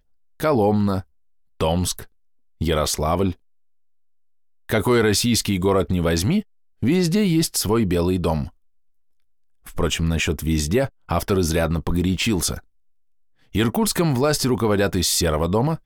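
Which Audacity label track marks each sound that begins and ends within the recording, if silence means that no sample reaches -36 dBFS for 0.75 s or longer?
4.690000	8.480000	sound
9.670000	12.600000	sound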